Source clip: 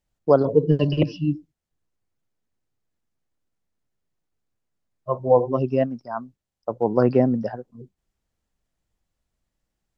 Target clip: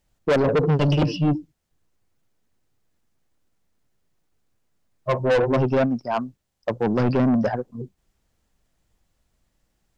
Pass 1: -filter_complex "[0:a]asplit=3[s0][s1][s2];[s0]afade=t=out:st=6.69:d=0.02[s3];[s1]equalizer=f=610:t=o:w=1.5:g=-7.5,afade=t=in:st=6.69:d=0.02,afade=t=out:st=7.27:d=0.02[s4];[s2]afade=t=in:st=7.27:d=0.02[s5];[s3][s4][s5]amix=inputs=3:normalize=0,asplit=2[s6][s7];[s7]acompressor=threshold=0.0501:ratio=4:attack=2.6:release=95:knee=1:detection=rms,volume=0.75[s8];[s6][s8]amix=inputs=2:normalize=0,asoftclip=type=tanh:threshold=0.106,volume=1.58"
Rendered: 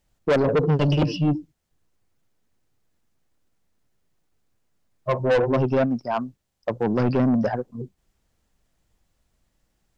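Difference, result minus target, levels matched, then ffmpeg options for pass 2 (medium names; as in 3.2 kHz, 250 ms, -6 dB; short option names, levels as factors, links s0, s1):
compression: peak gain reduction +7.5 dB
-filter_complex "[0:a]asplit=3[s0][s1][s2];[s0]afade=t=out:st=6.69:d=0.02[s3];[s1]equalizer=f=610:t=o:w=1.5:g=-7.5,afade=t=in:st=6.69:d=0.02,afade=t=out:st=7.27:d=0.02[s4];[s2]afade=t=in:st=7.27:d=0.02[s5];[s3][s4][s5]amix=inputs=3:normalize=0,asplit=2[s6][s7];[s7]acompressor=threshold=0.158:ratio=4:attack=2.6:release=95:knee=1:detection=rms,volume=0.75[s8];[s6][s8]amix=inputs=2:normalize=0,asoftclip=type=tanh:threshold=0.106,volume=1.58"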